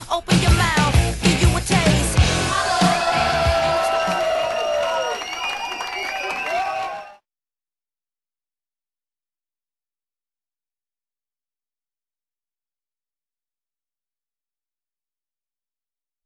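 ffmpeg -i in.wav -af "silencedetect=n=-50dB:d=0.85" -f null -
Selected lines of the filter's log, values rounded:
silence_start: 7.18
silence_end: 16.25 | silence_duration: 9.07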